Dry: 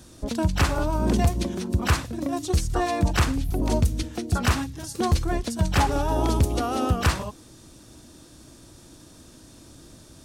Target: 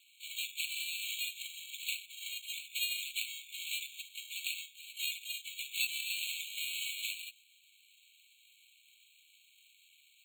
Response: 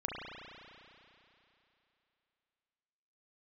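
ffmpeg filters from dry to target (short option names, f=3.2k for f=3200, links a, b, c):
-filter_complex "[0:a]acrusher=samples=25:mix=1:aa=0.000001,asplit=3[a][b][c];[b]asetrate=58866,aresample=44100,atempo=0.749154,volume=-7dB[d];[c]asetrate=66075,aresample=44100,atempo=0.66742,volume=-8dB[e];[a][d][e]amix=inputs=3:normalize=0,afftfilt=real='re*eq(mod(floor(b*sr/1024/2200),2),1)':imag='im*eq(mod(floor(b*sr/1024/2200),2),1)':win_size=1024:overlap=0.75,volume=-2.5dB"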